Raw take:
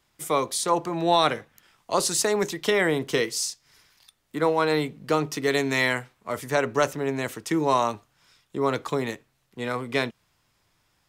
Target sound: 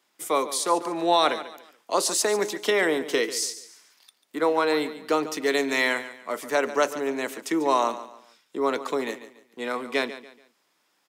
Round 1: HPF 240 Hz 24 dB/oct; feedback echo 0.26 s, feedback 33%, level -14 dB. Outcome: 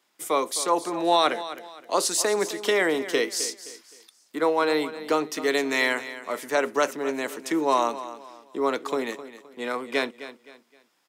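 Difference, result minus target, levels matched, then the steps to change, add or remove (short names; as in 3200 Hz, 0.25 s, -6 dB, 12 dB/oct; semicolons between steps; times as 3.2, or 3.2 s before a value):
echo 0.117 s late
change: feedback echo 0.143 s, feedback 33%, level -14 dB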